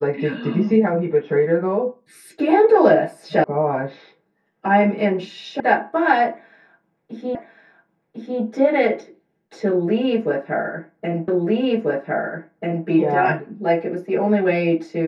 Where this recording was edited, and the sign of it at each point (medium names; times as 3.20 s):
3.44 s: sound stops dead
5.60 s: sound stops dead
7.35 s: repeat of the last 1.05 s
11.28 s: repeat of the last 1.59 s